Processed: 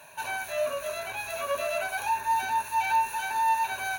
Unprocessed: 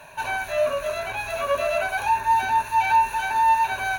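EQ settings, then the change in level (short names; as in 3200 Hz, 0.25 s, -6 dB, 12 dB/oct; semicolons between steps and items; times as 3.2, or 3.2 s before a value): HPF 120 Hz 6 dB/oct; high shelf 5300 Hz +10 dB; -6.5 dB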